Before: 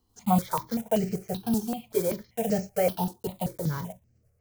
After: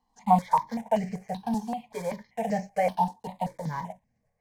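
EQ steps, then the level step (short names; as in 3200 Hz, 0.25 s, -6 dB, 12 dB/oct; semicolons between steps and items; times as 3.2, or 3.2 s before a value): air absorption 63 m; band shelf 1300 Hz +16 dB; fixed phaser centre 360 Hz, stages 6; -2.5 dB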